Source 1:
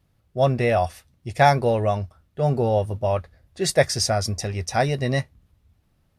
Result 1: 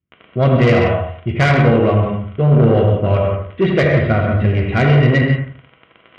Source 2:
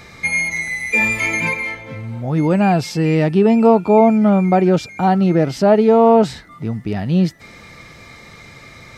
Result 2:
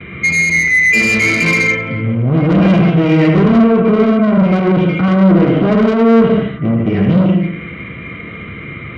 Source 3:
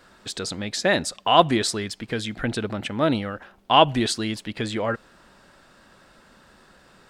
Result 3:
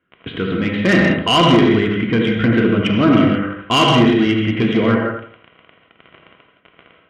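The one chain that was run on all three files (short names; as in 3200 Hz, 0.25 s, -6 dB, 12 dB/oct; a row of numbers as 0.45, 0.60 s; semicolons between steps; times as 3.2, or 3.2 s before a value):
EQ curve 340 Hz 0 dB, 630 Hz -11 dB, 1800 Hz -2 dB; gate -48 dBFS, range -26 dB; crackle 20/s -31 dBFS; HPF 49 Hz 12 dB/oct; notch 1200 Hz, Q 28; limiter -10.5 dBFS; non-linear reverb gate 0.21 s flat, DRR 1 dB; overloaded stage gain 14.5 dB; steep low-pass 3200 Hz 72 dB/oct; soft clip -21 dBFS; notch comb 860 Hz; on a send: analogue delay 83 ms, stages 1024, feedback 31%, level -5.5 dB; on the sum: normalise peaks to -2 dBFS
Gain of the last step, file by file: +14.0, +12.5, +13.5 dB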